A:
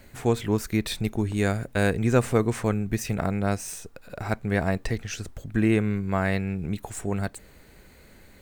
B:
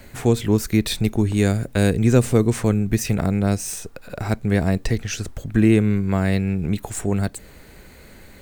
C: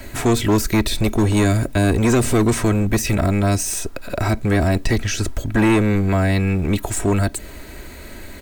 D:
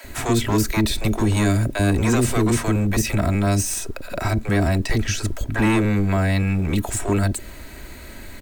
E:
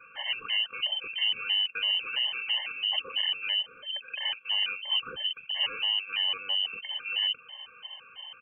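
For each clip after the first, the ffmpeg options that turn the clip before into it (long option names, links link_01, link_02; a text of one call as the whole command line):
ffmpeg -i in.wav -filter_complex "[0:a]acrossover=split=470|3000[link_01][link_02][link_03];[link_02]acompressor=threshold=-42dB:ratio=2[link_04];[link_01][link_04][link_03]amix=inputs=3:normalize=0,volume=7dB" out.wav
ffmpeg -i in.wav -filter_complex "[0:a]aecho=1:1:3.1:0.49,acrossover=split=570[link_01][link_02];[link_01]asoftclip=type=hard:threshold=-22dB[link_03];[link_02]alimiter=limit=-22dB:level=0:latency=1:release=50[link_04];[link_03][link_04]amix=inputs=2:normalize=0,volume=7.5dB" out.wav
ffmpeg -i in.wav -filter_complex "[0:a]acrossover=split=440[link_01][link_02];[link_01]adelay=40[link_03];[link_03][link_02]amix=inputs=2:normalize=0,volume=-1.5dB" out.wav
ffmpeg -i in.wav -af "asoftclip=type=hard:threshold=-18dB,lowpass=frequency=2600:width_type=q:width=0.5098,lowpass=frequency=2600:width_type=q:width=0.6013,lowpass=frequency=2600:width_type=q:width=0.9,lowpass=frequency=2600:width_type=q:width=2.563,afreqshift=-3100,afftfilt=real='re*gt(sin(2*PI*3*pts/sr)*(1-2*mod(floor(b*sr/1024/550),2)),0)':imag='im*gt(sin(2*PI*3*pts/sr)*(1-2*mod(floor(b*sr/1024/550),2)),0)':win_size=1024:overlap=0.75,volume=-6dB" out.wav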